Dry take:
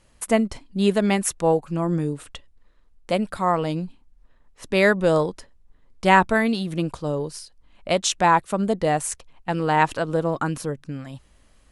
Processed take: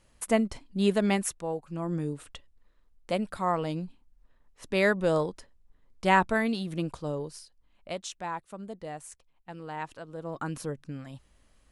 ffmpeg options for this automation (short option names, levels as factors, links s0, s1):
-af "volume=5.31,afade=t=out:st=1.16:d=0.31:silence=0.334965,afade=t=in:st=1.47:d=0.63:silence=0.398107,afade=t=out:st=7:d=1.16:silence=0.266073,afade=t=in:st=10.16:d=0.46:silence=0.266073"